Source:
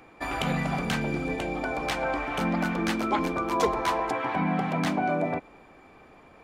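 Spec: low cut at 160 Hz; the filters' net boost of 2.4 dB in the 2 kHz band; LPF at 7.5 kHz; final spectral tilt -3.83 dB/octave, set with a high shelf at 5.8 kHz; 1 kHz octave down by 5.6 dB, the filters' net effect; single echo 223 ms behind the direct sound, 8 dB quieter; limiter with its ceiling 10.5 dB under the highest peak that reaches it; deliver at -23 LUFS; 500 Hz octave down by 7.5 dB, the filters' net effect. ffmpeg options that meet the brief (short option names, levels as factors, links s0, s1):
-af "highpass=160,lowpass=7500,equalizer=f=500:t=o:g=-8.5,equalizer=f=1000:t=o:g=-5.5,equalizer=f=2000:t=o:g=6,highshelf=f=5800:g=-6.5,alimiter=limit=0.0708:level=0:latency=1,aecho=1:1:223:0.398,volume=2.66"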